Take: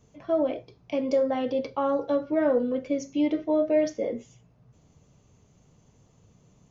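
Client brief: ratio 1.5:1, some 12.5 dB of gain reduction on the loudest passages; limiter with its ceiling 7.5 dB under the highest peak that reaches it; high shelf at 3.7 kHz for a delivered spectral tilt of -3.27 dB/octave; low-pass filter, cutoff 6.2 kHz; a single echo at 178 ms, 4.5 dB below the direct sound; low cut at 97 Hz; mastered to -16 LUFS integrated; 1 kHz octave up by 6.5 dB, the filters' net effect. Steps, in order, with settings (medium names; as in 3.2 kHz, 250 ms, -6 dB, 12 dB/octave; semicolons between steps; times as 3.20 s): high-pass 97 Hz; low-pass 6.2 kHz; peaking EQ 1 kHz +9 dB; treble shelf 3.7 kHz -8.5 dB; compression 1.5:1, threshold -53 dBFS; peak limiter -30 dBFS; delay 178 ms -4.5 dB; trim +22 dB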